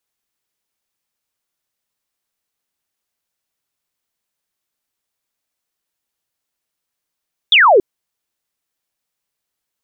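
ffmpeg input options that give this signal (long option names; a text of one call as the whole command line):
ffmpeg -f lavfi -i "aevalsrc='0.501*clip(t/0.002,0,1)*clip((0.28-t)/0.002,0,1)*sin(2*PI*3700*0.28/log(350/3700)*(exp(log(350/3700)*t/0.28)-1))':duration=0.28:sample_rate=44100" out.wav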